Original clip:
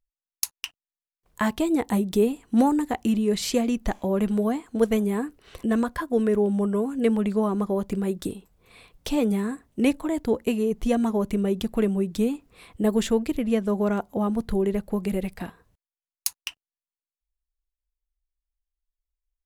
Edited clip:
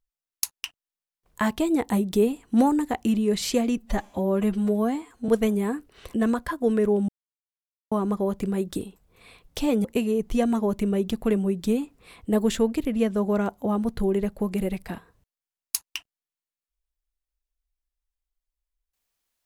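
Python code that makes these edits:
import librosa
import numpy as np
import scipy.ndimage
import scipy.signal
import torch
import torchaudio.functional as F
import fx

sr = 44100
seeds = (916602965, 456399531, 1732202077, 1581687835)

y = fx.edit(x, sr, fx.stretch_span(start_s=3.77, length_s=1.01, factor=1.5),
    fx.silence(start_s=6.58, length_s=0.83),
    fx.cut(start_s=9.34, length_s=1.02), tone=tone)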